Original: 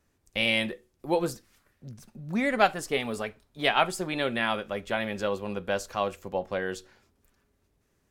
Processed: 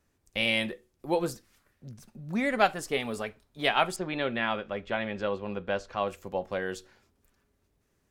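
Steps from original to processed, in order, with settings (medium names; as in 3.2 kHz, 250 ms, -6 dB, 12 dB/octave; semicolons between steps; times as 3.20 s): 3.96–6.08 s: low-pass 3.7 kHz 12 dB/octave; trim -1.5 dB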